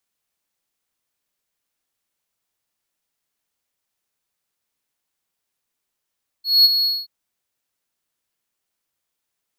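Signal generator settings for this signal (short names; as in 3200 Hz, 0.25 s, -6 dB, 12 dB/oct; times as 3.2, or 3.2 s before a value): ADSR triangle 4340 Hz, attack 0.209 s, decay 26 ms, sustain -8.5 dB, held 0.41 s, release 0.217 s -5.5 dBFS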